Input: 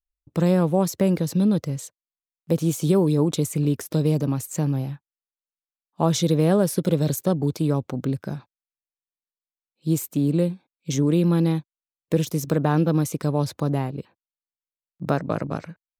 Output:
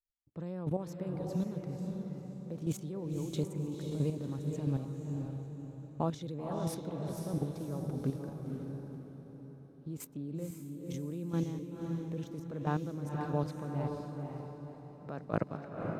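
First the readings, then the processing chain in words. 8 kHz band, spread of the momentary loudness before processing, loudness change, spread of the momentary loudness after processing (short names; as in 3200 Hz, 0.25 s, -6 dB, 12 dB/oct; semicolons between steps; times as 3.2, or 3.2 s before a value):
-18.5 dB, 12 LU, -15.0 dB, 10 LU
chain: LPF 3200 Hz 6 dB/oct; level quantiser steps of 14 dB; chopper 1.5 Hz, depth 65%, duty 15%; diffused feedback echo 0.519 s, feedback 48%, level -3 dB; mismatched tape noise reduction decoder only; gain -2 dB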